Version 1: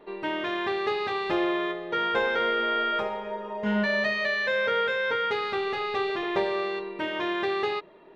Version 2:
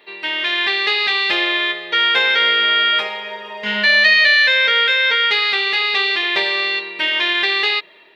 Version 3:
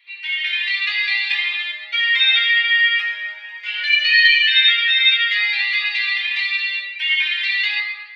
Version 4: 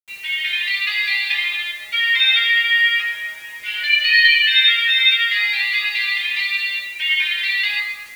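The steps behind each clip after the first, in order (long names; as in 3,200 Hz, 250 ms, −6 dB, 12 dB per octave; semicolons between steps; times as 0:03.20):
spectral tilt +3.5 dB per octave; automatic gain control gain up to 3.5 dB; flat-topped bell 2,900 Hz +10.5 dB
high-pass with resonance 2,300 Hz, resonance Q 3; convolution reverb RT60 1.6 s, pre-delay 3 ms, DRR −3 dB; flanger whose copies keep moving one way rising 1.4 Hz; level −6 dB
bit reduction 7 bits; pitch vibrato 0.35 Hz 8.3 cents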